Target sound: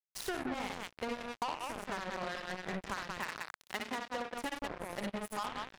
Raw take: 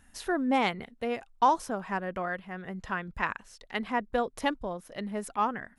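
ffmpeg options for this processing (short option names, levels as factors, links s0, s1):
-filter_complex "[0:a]asplit=2[s0][s1];[s1]aecho=0:1:58.31|93.29|180.8:0.794|0.355|0.631[s2];[s0][s2]amix=inputs=2:normalize=0,acompressor=threshold=0.0158:ratio=16,acrusher=bits=5:mix=0:aa=0.5,asettb=1/sr,asplit=3[s3][s4][s5];[s3]atrim=end=3.174[s6];[s4]atrim=start=3.17:end=4.34,asetpts=PTS-STARTPTS,afade=t=in:d=0.004:c=qsin,afade=t=out:st=1.166:d=0.004:c=qsin,highpass=f=130:p=1[s7];[s5]atrim=start=4.336[s8];[s6][s7]acrossfade=d=0.004:c1=hsin:c2=qsin[s9];[s9][s8]acrossfade=d=0.004:c1=qsin:c2=hsin,volume=1.12"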